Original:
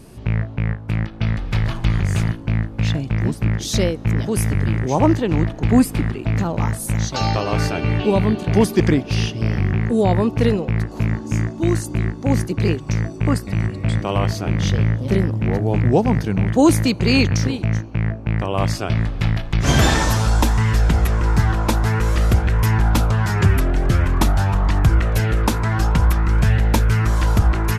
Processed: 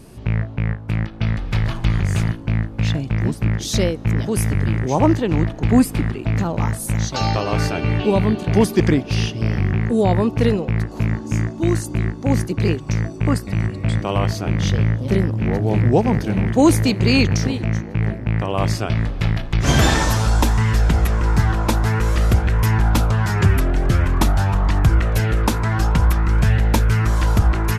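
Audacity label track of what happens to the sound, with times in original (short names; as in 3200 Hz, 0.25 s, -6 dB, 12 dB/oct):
14.790000	15.920000	echo throw 0.59 s, feedback 80%, level -9.5 dB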